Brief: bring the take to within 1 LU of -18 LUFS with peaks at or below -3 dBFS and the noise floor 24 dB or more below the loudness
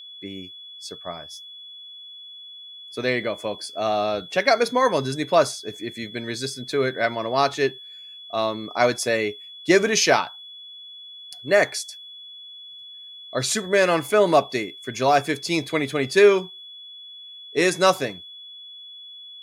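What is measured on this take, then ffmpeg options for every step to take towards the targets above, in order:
steady tone 3400 Hz; tone level -39 dBFS; loudness -22.0 LUFS; peak -4.5 dBFS; loudness target -18.0 LUFS
-> -af "bandreject=f=3.4k:w=30"
-af "volume=4dB,alimiter=limit=-3dB:level=0:latency=1"

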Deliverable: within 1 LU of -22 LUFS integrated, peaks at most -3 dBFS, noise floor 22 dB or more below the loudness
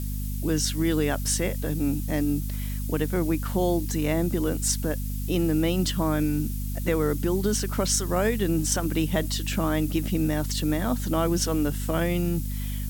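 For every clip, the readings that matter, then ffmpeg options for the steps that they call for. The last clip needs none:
hum 50 Hz; harmonics up to 250 Hz; hum level -27 dBFS; noise floor -30 dBFS; noise floor target -48 dBFS; loudness -26.0 LUFS; peak -10.0 dBFS; loudness target -22.0 LUFS
-> -af "bandreject=f=50:t=h:w=6,bandreject=f=100:t=h:w=6,bandreject=f=150:t=h:w=6,bandreject=f=200:t=h:w=6,bandreject=f=250:t=h:w=6"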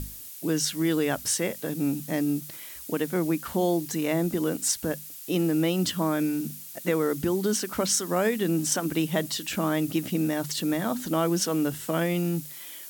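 hum none; noise floor -42 dBFS; noise floor target -49 dBFS
-> -af "afftdn=nr=7:nf=-42"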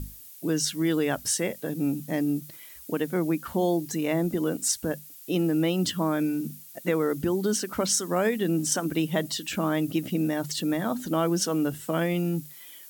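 noise floor -47 dBFS; noise floor target -49 dBFS
-> -af "afftdn=nr=6:nf=-47"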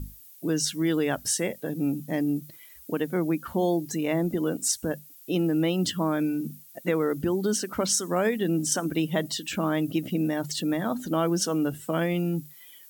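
noise floor -50 dBFS; loudness -27.0 LUFS; peak -11.5 dBFS; loudness target -22.0 LUFS
-> -af "volume=5dB"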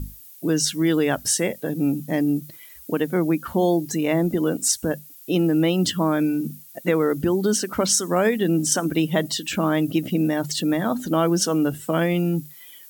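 loudness -22.0 LUFS; peak -6.5 dBFS; noise floor -45 dBFS

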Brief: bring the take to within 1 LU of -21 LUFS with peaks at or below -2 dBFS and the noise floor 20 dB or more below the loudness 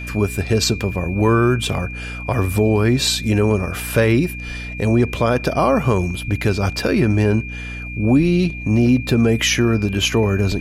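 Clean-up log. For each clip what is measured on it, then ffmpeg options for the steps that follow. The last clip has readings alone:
hum 60 Hz; harmonics up to 300 Hz; hum level -28 dBFS; steady tone 2400 Hz; tone level -31 dBFS; loudness -18.0 LUFS; peak -4.0 dBFS; loudness target -21.0 LUFS
-> -af "bandreject=f=60:t=h:w=4,bandreject=f=120:t=h:w=4,bandreject=f=180:t=h:w=4,bandreject=f=240:t=h:w=4,bandreject=f=300:t=h:w=4"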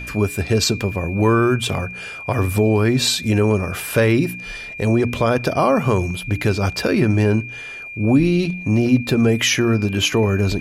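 hum none; steady tone 2400 Hz; tone level -31 dBFS
-> -af "bandreject=f=2.4k:w=30"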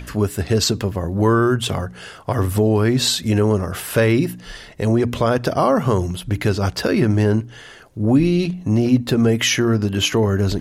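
steady tone none; loudness -18.5 LUFS; peak -4.0 dBFS; loudness target -21.0 LUFS
-> -af "volume=-2.5dB"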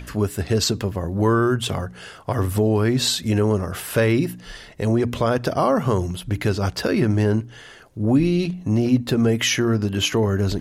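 loudness -21.0 LUFS; peak -6.5 dBFS; noise floor -43 dBFS

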